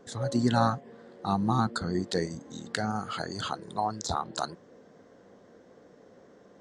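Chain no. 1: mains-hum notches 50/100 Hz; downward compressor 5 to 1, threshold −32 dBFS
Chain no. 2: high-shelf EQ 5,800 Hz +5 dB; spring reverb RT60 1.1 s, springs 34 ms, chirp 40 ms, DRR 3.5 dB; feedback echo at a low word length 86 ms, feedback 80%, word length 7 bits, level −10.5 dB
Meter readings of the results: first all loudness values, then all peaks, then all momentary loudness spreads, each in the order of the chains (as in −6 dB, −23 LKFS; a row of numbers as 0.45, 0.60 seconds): −37.5, −27.5 LKFS; −14.5, −7.5 dBFS; 21, 12 LU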